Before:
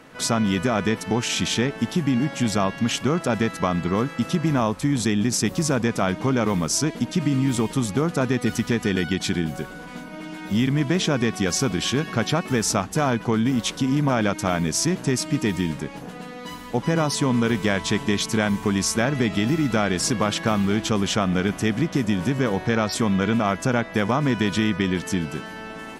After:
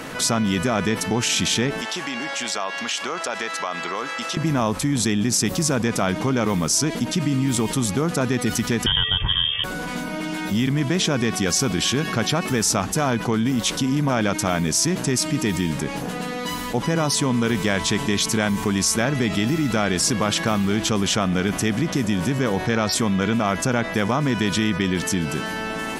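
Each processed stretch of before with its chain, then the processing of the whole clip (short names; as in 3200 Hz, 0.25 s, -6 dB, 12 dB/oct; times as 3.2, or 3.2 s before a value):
1.81–4.37 BPF 640–7300 Hz + compressor 2:1, threshold -33 dBFS
8.86–9.64 inverted band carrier 3400 Hz + resonant low shelf 170 Hz +13 dB, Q 1.5
whole clip: high shelf 4000 Hz +5.5 dB; fast leveller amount 50%; gain -1.5 dB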